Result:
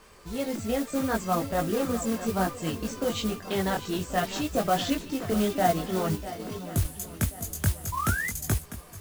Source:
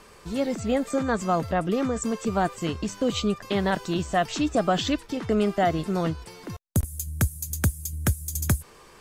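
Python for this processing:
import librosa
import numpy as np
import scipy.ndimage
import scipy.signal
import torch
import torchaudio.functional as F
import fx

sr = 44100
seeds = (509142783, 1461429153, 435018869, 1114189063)

y = fx.echo_swing(x, sr, ms=1082, ratio=1.5, feedback_pct=37, wet_db=-13)
y = fx.spec_paint(y, sr, seeds[0], shape='rise', start_s=7.92, length_s=0.37, low_hz=970.0, high_hz=2100.0, level_db=-27.0)
y = fx.chorus_voices(y, sr, voices=4, hz=0.63, base_ms=20, depth_ms=2.3, mix_pct=45)
y = fx.mod_noise(y, sr, seeds[1], snr_db=15)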